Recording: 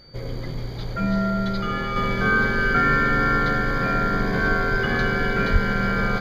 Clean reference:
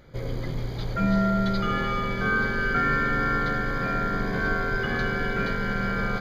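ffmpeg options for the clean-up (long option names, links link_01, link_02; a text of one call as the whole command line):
ffmpeg -i in.wav -filter_complex "[0:a]bandreject=frequency=4600:width=30,asplit=3[link_01][link_02][link_03];[link_01]afade=type=out:start_time=5.52:duration=0.02[link_04];[link_02]highpass=frequency=140:width=0.5412,highpass=frequency=140:width=1.3066,afade=type=in:start_time=5.52:duration=0.02,afade=type=out:start_time=5.64:duration=0.02[link_05];[link_03]afade=type=in:start_time=5.64:duration=0.02[link_06];[link_04][link_05][link_06]amix=inputs=3:normalize=0,asetnsamples=nb_out_samples=441:pad=0,asendcmd='1.96 volume volume -4.5dB',volume=0dB" out.wav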